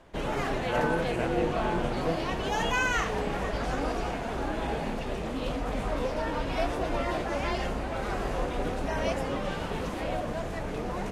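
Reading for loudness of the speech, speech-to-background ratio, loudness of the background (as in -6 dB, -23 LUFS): -35.5 LUFS, -4.5 dB, -31.0 LUFS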